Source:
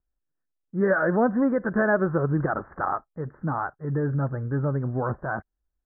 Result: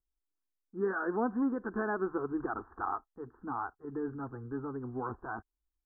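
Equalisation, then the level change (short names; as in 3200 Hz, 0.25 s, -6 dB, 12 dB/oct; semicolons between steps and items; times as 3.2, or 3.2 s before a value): fixed phaser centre 580 Hz, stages 6; -6.0 dB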